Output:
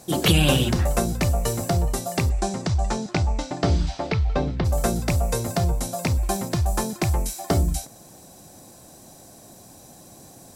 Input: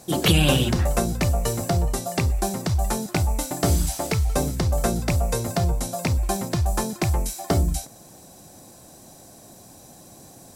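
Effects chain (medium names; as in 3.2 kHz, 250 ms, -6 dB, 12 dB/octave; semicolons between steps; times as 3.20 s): 2.29–4.64 s: low-pass 8.6 kHz -> 3.6 kHz 24 dB/octave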